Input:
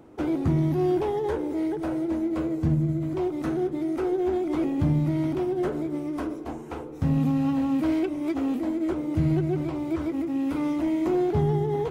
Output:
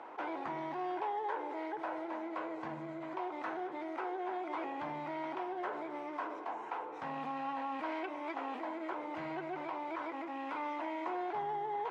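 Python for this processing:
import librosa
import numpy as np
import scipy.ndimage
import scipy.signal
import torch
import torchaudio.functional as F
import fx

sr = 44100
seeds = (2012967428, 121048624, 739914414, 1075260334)

y = fx.ladder_bandpass(x, sr, hz=1200.0, resonance_pct=55)
y = fx.peak_eq(y, sr, hz=1200.0, db=-10.5, octaves=0.47)
y = fx.env_flatten(y, sr, amount_pct=50)
y = F.gain(torch.from_numpy(y), 9.5).numpy()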